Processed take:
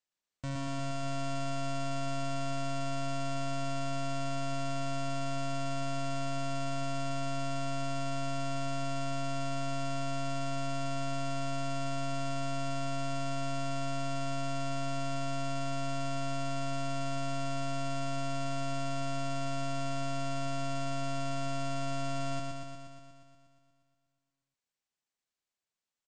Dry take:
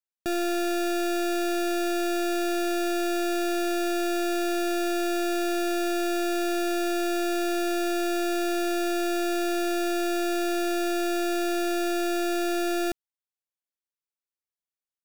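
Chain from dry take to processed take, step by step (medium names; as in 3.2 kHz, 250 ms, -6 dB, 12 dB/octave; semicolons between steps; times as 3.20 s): gain riding; pitch shift -6.5 st; peak limiter -31 dBFS, peak gain reduction 9.5 dB; on a send: flutter echo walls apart 11.8 m, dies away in 1.3 s; on the sum: speed mistake 78 rpm record played at 45 rpm; trim -2 dB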